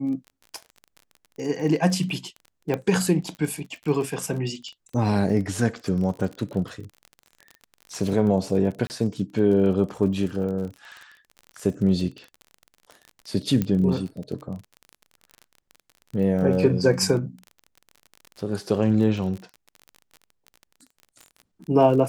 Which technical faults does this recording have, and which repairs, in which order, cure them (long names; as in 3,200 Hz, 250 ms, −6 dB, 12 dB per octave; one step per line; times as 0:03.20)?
surface crackle 34 per second −32 dBFS
0:02.74: click −14 dBFS
0:08.87–0:08.90: drop-out 29 ms
0:13.62: click −12 dBFS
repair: click removal
repair the gap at 0:08.87, 29 ms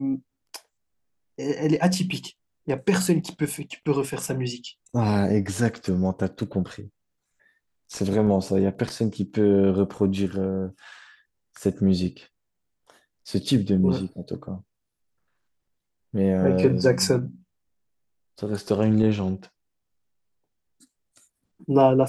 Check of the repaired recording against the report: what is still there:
none of them is left